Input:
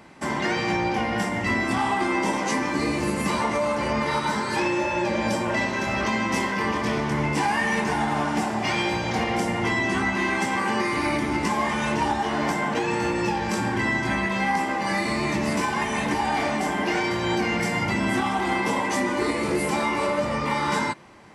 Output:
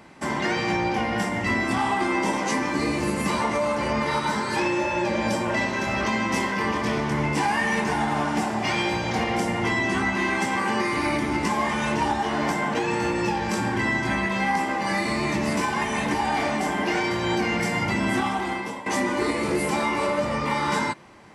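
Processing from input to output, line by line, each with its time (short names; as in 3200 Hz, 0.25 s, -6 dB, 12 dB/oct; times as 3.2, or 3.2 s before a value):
18.24–18.86 fade out, to -15 dB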